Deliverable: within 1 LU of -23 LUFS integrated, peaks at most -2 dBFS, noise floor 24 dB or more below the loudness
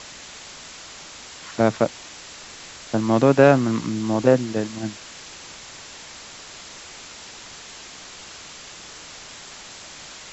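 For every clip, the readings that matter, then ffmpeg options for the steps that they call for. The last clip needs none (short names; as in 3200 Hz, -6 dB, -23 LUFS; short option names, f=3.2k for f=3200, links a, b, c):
noise floor -41 dBFS; noise floor target -45 dBFS; loudness -20.5 LUFS; peak -2.0 dBFS; loudness target -23.0 LUFS
-> -af "afftdn=nr=6:nf=-41"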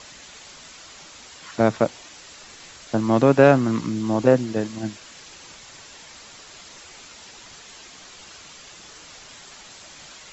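noise floor -45 dBFS; loudness -20.5 LUFS; peak -2.0 dBFS; loudness target -23.0 LUFS
-> -af "volume=-2.5dB"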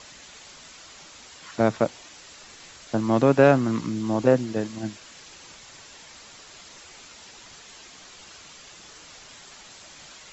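loudness -23.0 LUFS; peak -4.5 dBFS; noise floor -47 dBFS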